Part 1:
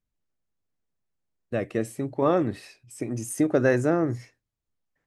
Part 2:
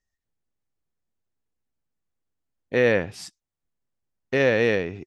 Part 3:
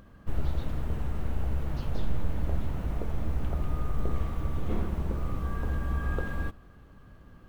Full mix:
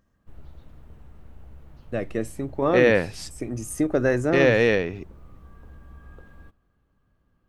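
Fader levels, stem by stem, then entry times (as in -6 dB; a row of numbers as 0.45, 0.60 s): -0.5, +1.5, -16.0 dB; 0.40, 0.00, 0.00 s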